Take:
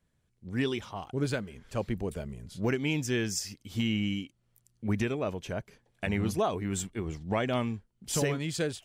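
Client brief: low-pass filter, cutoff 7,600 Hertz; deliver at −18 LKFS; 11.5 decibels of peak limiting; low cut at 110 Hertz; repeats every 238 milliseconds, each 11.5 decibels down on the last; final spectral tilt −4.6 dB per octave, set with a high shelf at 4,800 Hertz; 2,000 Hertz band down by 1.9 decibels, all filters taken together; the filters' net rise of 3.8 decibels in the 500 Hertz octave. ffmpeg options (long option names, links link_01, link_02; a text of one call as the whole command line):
ffmpeg -i in.wav -af "highpass=110,lowpass=7600,equalizer=frequency=500:width_type=o:gain=5,equalizer=frequency=2000:width_type=o:gain=-4,highshelf=frequency=4800:gain=7.5,alimiter=level_in=0.5dB:limit=-24dB:level=0:latency=1,volume=-0.5dB,aecho=1:1:238|476|714:0.266|0.0718|0.0194,volume=17dB" out.wav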